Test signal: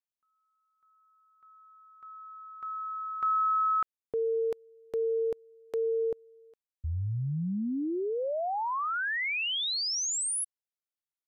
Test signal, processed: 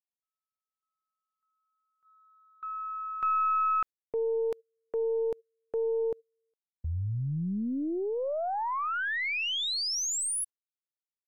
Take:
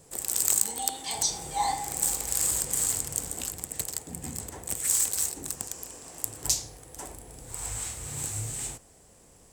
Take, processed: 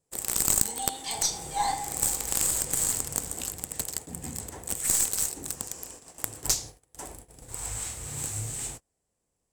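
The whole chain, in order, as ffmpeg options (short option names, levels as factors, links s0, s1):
-af "agate=range=0.0631:threshold=0.00562:ratio=16:release=153:detection=peak,aeval=exprs='(tanh(3.16*val(0)+0.8)-tanh(0.8))/3.16':c=same,volume=1.78"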